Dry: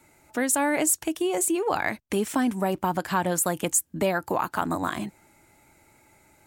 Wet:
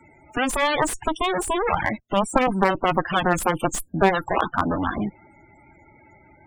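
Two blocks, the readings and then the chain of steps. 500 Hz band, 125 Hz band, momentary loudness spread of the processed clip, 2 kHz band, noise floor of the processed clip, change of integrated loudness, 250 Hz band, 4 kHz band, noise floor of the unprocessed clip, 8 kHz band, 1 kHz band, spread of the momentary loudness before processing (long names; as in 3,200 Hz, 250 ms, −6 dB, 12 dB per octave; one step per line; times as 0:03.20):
+3.5 dB, +5.0 dB, 6 LU, +5.5 dB, −54 dBFS, +2.5 dB, +1.5 dB, +7.0 dB, −61 dBFS, −6.5 dB, +6.0 dB, 6 LU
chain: harmonic generator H 4 −13 dB, 7 −10 dB, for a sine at −9.5 dBFS
spectral peaks only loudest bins 32
slew-rate limiting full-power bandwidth 160 Hz
level +7 dB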